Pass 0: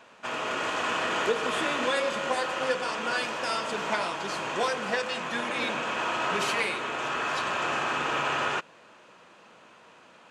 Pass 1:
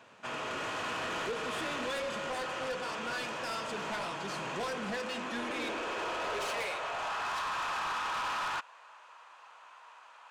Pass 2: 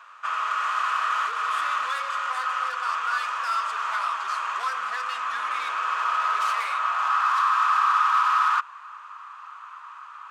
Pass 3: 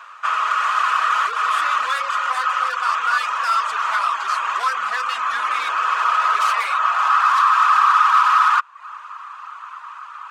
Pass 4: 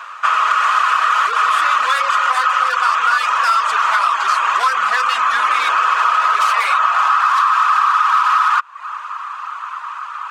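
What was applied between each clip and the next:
high-pass sweep 100 Hz -> 950 Hz, 3.85–7.46; soft clip -27.5 dBFS, distortion -9 dB; gain -4 dB
resonant high-pass 1200 Hz, resonance Q 8; gain +2 dB
reverb removal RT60 0.54 s; gain +8 dB
compressor, threshold -19 dBFS, peak gain reduction 9 dB; gain +8 dB

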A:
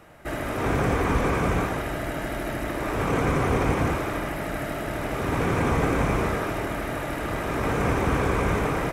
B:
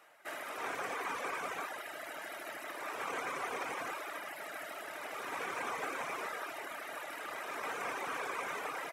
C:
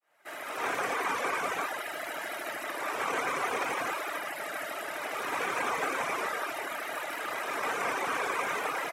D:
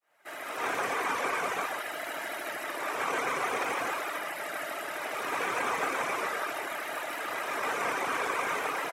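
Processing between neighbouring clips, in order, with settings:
reverb removal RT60 0.94 s; Bessel high-pass 880 Hz, order 2; gain -6 dB
opening faded in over 0.67 s; vibrato 0.6 Hz 20 cents; gain +7.5 dB
echo 0.134 s -9.5 dB

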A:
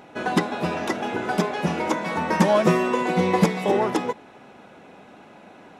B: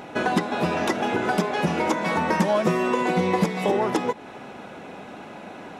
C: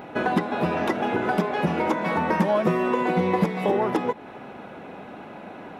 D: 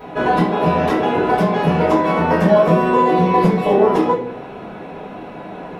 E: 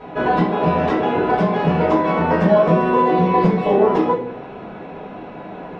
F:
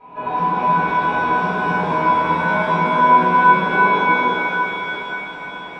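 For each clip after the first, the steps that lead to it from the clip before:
compressor 3:1, threshold -29 dBFS, peak gain reduction 12.5 dB; gain +7.5 dB
bell 7000 Hz -12 dB 1.6 oct
reverb RT60 0.55 s, pre-delay 3 ms, DRR -10 dB; gain -6.5 dB
air absorption 110 m; gain -1 dB
small resonant body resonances 1000/2400 Hz, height 16 dB, ringing for 25 ms; shimmer reverb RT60 3.9 s, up +7 st, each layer -8 dB, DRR -7.5 dB; gain -16.5 dB

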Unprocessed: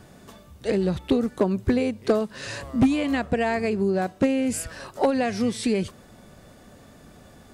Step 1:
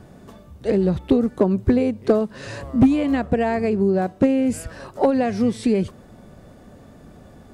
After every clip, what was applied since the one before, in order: tilt shelf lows +5 dB, about 1300 Hz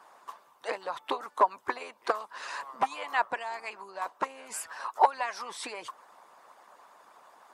harmonic-percussive split harmonic -17 dB; resonant high-pass 1000 Hz, resonance Q 4.2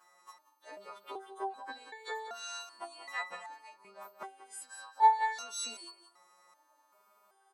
frequency quantiser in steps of 2 st; echo 0.184 s -10.5 dB; stepped resonator 2.6 Hz 180–440 Hz; gain +4 dB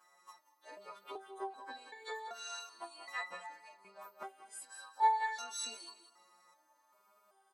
flange 0.83 Hz, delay 9.3 ms, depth 3.7 ms, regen +45%; reverb RT60 1.3 s, pre-delay 0.159 s, DRR 19 dB; gain +1.5 dB

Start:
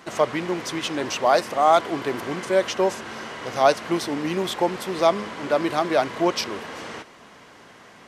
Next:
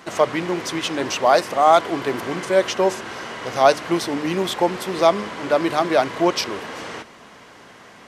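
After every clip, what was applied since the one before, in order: de-hum 74.38 Hz, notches 5; gain +3 dB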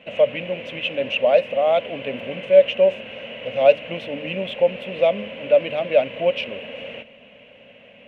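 EQ curve 170 Hz 0 dB, 240 Hz +5 dB, 350 Hz -13 dB, 550 Hz +13 dB, 780 Hz -7 dB, 1200 Hz -14 dB, 1900 Hz -4 dB, 2700 Hz +13 dB, 4800 Hz -23 dB, 10000 Hz -25 dB; gain -5 dB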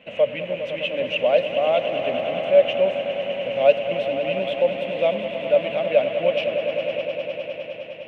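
swelling echo 0.102 s, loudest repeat 5, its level -12 dB; gain -2.5 dB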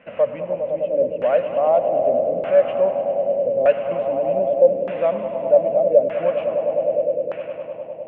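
in parallel at -9 dB: soft clip -20.5 dBFS, distortion -7 dB; on the sum: LFO low-pass saw down 0.82 Hz 450–1600 Hz; gain -2.5 dB

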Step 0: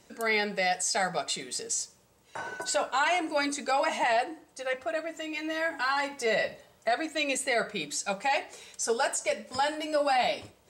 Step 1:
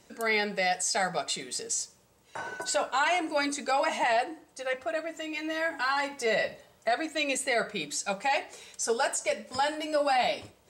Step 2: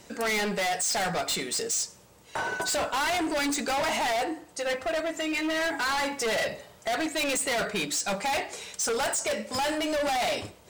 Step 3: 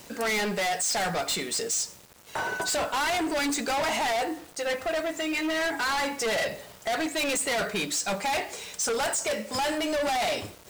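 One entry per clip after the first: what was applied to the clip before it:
nothing audible
hard clip -33.5 dBFS, distortion -5 dB; gain +8 dB
zero-crossing step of -52.5 dBFS; bit-crush 8-bit

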